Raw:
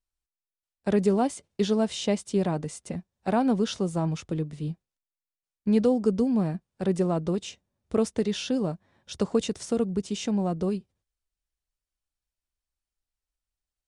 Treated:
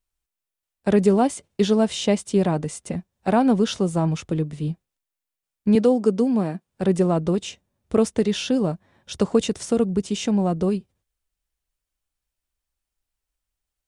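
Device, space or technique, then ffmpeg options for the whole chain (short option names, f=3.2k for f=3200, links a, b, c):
exciter from parts: -filter_complex "[0:a]asplit=2[a][b];[b]highpass=3.7k,asoftclip=type=tanh:threshold=-30dB,highpass=f=3k:w=0.5412,highpass=f=3k:w=1.3066,volume=-12.5dB[c];[a][c]amix=inputs=2:normalize=0,asettb=1/sr,asplit=3[d][e][f];[d]atrim=end=5.754[g];[e]atrim=start=5.75:end=6.67,asetpts=PTS-STARTPTS,afade=t=in:d=0.004:c=qsin,afade=t=out:st=0.916:d=0.004:c=qsin,highpass=210[h];[f]atrim=start=6.666[i];[g][h]acrossfade=d=0.004:c1=hsin:c2=qsin[j];[j][i]acrossfade=d=0.004:c1=qsin:c2=hsin,volume=5.5dB"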